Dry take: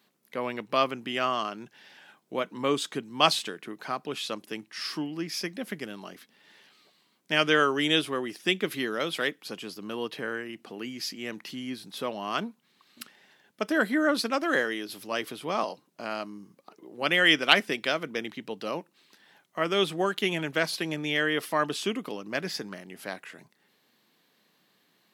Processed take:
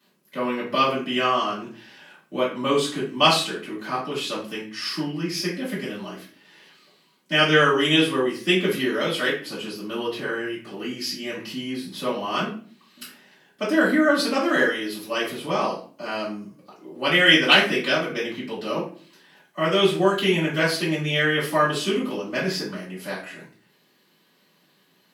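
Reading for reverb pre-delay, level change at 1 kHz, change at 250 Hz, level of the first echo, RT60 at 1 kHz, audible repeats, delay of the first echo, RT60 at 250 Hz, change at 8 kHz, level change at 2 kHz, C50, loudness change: 3 ms, +5.0 dB, +7.0 dB, no echo audible, 0.40 s, no echo audible, no echo audible, 0.60 s, +4.5 dB, +5.5 dB, 5.5 dB, +6.0 dB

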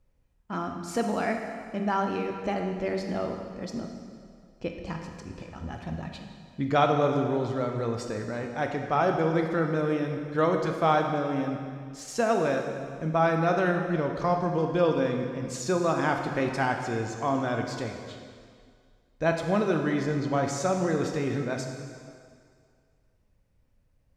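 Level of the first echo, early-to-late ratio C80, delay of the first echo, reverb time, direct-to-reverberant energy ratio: no echo audible, 5.5 dB, no echo audible, 2.1 s, 3.0 dB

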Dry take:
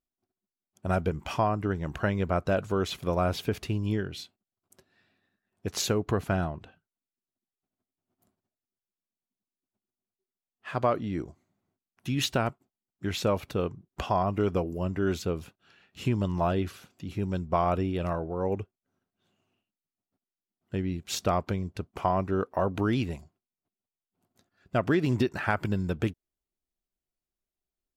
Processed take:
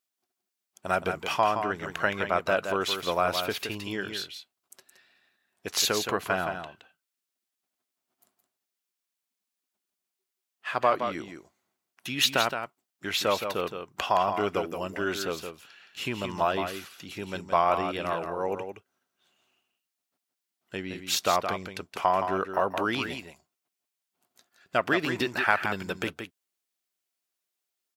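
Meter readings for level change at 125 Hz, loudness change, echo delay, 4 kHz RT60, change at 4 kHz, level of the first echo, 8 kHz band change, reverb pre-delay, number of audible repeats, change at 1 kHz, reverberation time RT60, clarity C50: −11.0 dB, +1.5 dB, 169 ms, no reverb audible, +7.5 dB, −7.5 dB, +5.0 dB, no reverb audible, 1, +4.5 dB, no reverb audible, no reverb audible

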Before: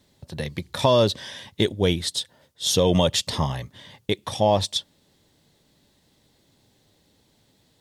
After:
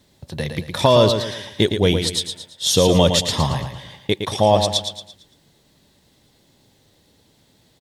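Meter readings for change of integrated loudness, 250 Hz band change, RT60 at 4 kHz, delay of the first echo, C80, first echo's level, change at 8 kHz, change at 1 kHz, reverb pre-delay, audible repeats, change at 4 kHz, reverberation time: +4.5 dB, +4.5 dB, no reverb audible, 113 ms, no reverb audible, −7.0 dB, +5.0 dB, +5.0 dB, no reverb audible, 4, +5.0 dB, no reverb audible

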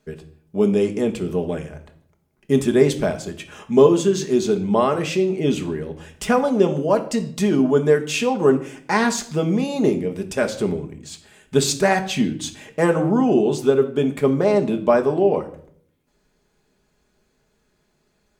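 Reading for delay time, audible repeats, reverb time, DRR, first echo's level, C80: no echo audible, no echo audible, 0.55 s, 4.5 dB, no echo audible, 16.5 dB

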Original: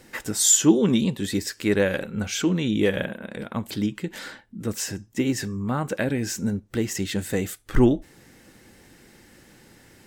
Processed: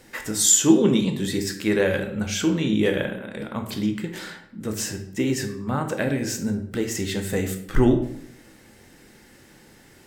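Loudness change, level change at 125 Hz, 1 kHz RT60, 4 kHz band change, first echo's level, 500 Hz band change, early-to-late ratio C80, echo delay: +1.0 dB, +0.5 dB, 0.70 s, +1.0 dB, no echo audible, +1.5 dB, 12.0 dB, no echo audible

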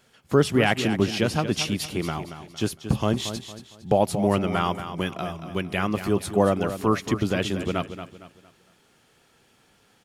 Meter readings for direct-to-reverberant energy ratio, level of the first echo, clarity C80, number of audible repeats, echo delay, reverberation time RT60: no reverb audible, −10.5 dB, no reverb audible, 3, 229 ms, no reverb audible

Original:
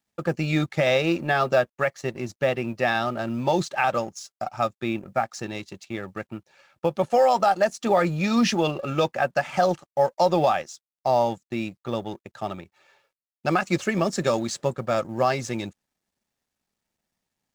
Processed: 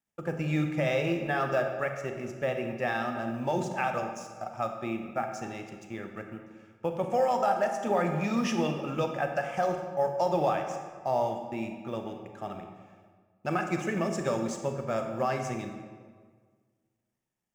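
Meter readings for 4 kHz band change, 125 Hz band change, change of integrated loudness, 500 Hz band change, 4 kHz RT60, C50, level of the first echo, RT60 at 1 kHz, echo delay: −10.5 dB, −5.0 dB, −6.0 dB, −6.0 dB, 1.1 s, 6.0 dB, no echo audible, 1.6 s, no echo audible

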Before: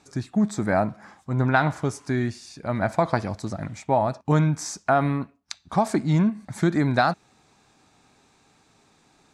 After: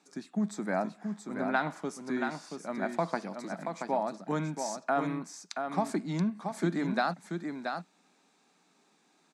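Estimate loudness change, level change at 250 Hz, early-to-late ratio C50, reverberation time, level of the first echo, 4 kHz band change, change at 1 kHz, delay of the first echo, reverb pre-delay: −9.0 dB, −8.0 dB, no reverb audible, no reverb audible, −6.0 dB, −7.0 dB, −8.0 dB, 679 ms, no reverb audible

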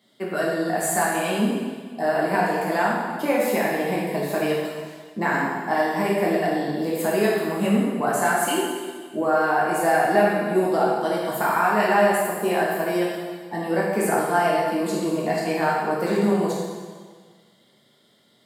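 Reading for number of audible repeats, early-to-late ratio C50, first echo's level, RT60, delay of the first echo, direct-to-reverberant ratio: no echo audible, −0.5 dB, no echo audible, 1.6 s, no echo audible, −5.5 dB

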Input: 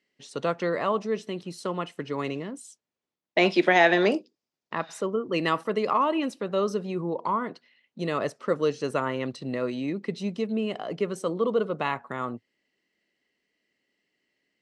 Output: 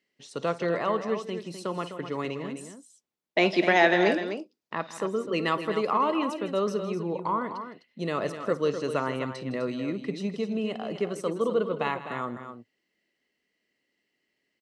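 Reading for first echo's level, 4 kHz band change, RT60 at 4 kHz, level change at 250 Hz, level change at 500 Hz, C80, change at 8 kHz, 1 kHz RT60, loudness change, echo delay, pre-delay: −19.0 dB, −1.0 dB, no reverb audible, −1.0 dB, −1.0 dB, no reverb audible, −1.0 dB, no reverb audible, −1.0 dB, 53 ms, no reverb audible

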